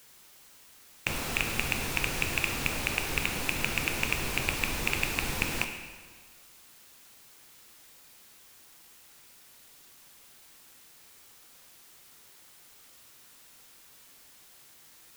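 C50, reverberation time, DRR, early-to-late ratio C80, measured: 7.0 dB, 1.5 s, 5.0 dB, 8.0 dB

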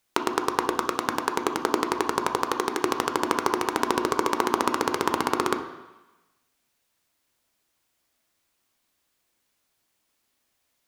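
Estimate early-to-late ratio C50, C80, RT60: 8.5 dB, 11.0 dB, 1.1 s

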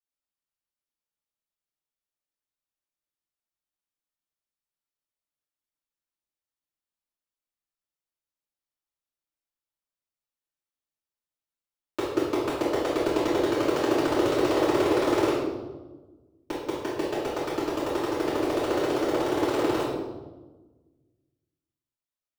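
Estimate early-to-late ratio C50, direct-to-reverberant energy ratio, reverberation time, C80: 0.5 dB, -13.5 dB, 1.3 s, 3.5 dB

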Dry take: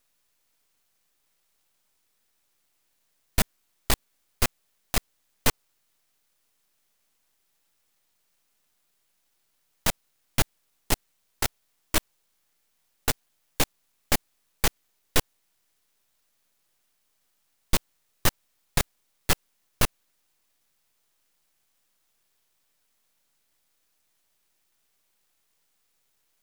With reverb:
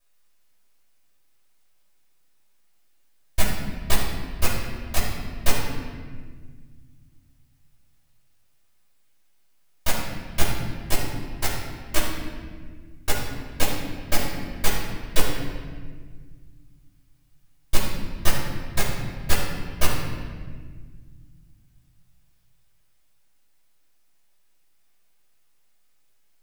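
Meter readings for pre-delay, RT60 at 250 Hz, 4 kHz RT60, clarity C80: 3 ms, 2.9 s, 1.2 s, 3.5 dB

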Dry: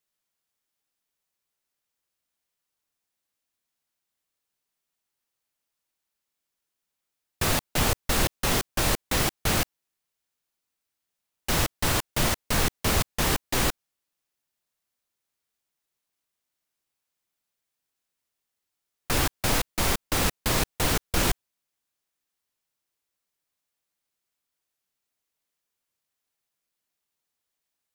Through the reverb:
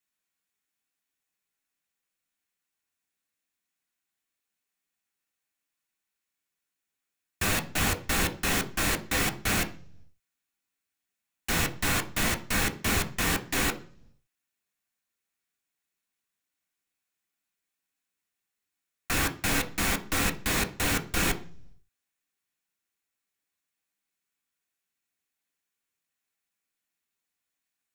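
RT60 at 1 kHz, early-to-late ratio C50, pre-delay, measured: 0.40 s, 16.5 dB, 3 ms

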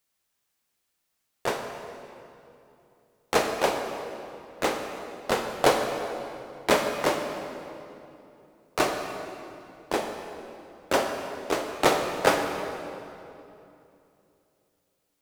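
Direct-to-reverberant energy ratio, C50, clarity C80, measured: 3.5 dB, 4.5 dB, 5.5 dB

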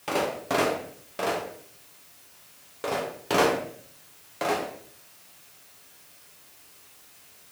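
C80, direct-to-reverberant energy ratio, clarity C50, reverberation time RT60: 9.5 dB, -3.0 dB, 6.0 dB, 0.60 s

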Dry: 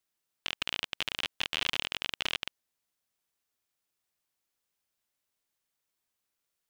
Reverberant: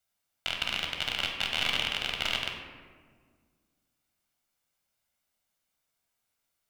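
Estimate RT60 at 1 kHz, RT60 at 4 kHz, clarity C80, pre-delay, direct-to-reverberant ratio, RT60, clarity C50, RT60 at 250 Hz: 1.6 s, 0.85 s, 5.5 dB, 14 ms, 1.0 dB, 1.7 s, 4.0 dB, 2.5 s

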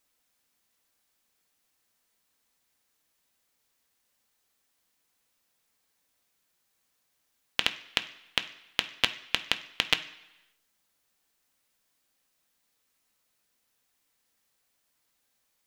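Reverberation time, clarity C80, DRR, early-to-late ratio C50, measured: 1.0 s, 17.0 dB, 7.0 dB, 14.5 dB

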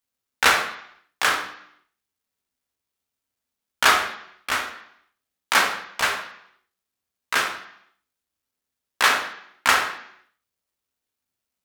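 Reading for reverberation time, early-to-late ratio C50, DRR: 0.70 s, 7.5 dB, 3.5 dB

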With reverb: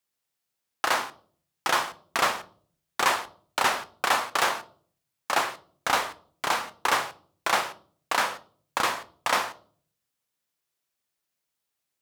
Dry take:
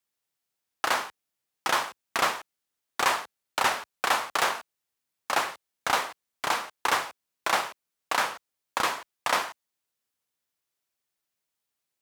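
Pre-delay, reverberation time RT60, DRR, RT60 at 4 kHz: 6 ms, 0.50 s, 12.0 dB, 0.40 s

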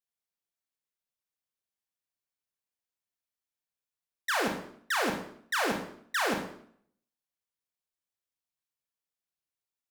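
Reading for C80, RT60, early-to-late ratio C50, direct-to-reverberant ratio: 9.5 dB, 0.60 s, 6.0 dB, 2.0 dB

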